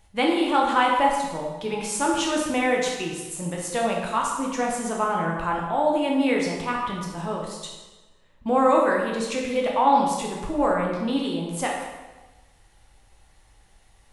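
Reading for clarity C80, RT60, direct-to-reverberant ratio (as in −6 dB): 4.0 dB, 1.2 s, −1.5 dB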